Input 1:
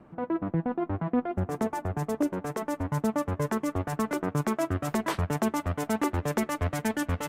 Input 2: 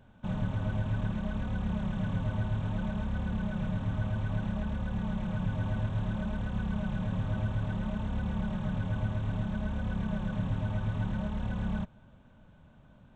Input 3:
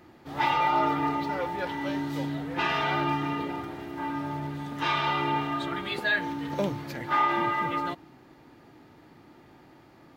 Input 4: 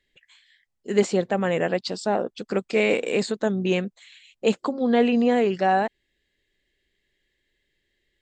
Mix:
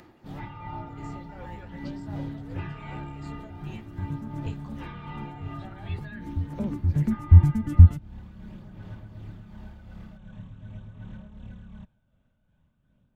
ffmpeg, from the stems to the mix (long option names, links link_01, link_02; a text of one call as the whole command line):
ffmpeg -i stem1.wav -i stem2.wav -i stem3.wav -i stem4.wav -filter_complex "[0:a]asubboost=boost=10.5:cutoff=180,adelay=700,volume=1.5dB[link_01];[1:a]equalizer=frequency=860:width_type=o:width=1.1:gain=-5.5,volume=-10.5dB[link_02];[2:a]acrossover=split=2800[link_03][link_04];[link_04]acompressor=threshold=-49dB:ratio=4:attack=1:release=60[link_05];[link_03][link_05]amix=inputs=2:normalize=0,acompressor=mode=upward:threshold=-52dB:ratio=2.5,volume=-2dB[link_06];[3:a]highpass=630,flanger=delay=17.5:depth=3.7:speed=0.33,volume=-9.5dB,asplit=2[link_07][link_08];[link_08]apad=whole_len=352194[link_09];[link_01][link_09]sidechaincompress=threshold=-59dB:ratio=8:attack=16:release=1000[link_10];[link_10][link_02][link_06][link_07]amix=inputs=4:normalize=0,acrossover=split=250[link_11][link_12];[link_12]acompressor=threshold=-46dB:ratio=2.5[link_13];[link_11][link_13]amix=inputs=2:normalize=0,aphaser=in_gain=1:out_gain=1:delay=1.5:decay=0.26:speed=0.45:type=sinusoidal,tremolo=f=2.7:d=0.47" out.wav